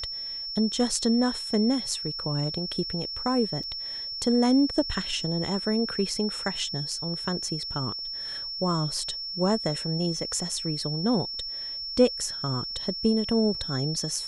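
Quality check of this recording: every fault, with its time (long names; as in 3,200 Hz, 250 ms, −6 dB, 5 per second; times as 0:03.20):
whistle 5,400 Hz −32 dBFS
0:03.63–0:03.64: drop-out 5.7 ms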